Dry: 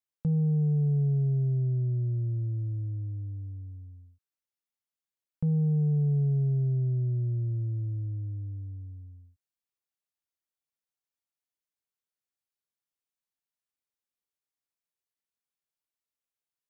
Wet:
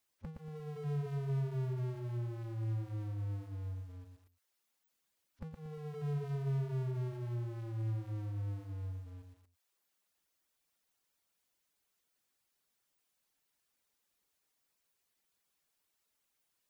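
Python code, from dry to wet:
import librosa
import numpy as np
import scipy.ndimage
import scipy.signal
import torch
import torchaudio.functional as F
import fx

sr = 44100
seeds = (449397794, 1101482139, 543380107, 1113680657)

y = x + 10.0 ** (-10.5 / 20.0) * np.pad(x, (int(198 * sr / 1000.0), 0))[:len(x)]
y = fx.noise_reduce_blind(y, sr, reduce_db=26)
y = fx.peak_eq(y, sr, hz=120.0, db=-4.5, octaves=0.26)
y = fx.dereverb_blind(y, sr, rt60_s=0.53)
y = fx.power_curve(y, sr, exponent=0.5)
y = fx.echo_crushed(y, sr, ms=117, feedback_pct=35, bits=10, wet_db=-5)
y = F.gain(torch.from_numpy(y), -8.0).numpy()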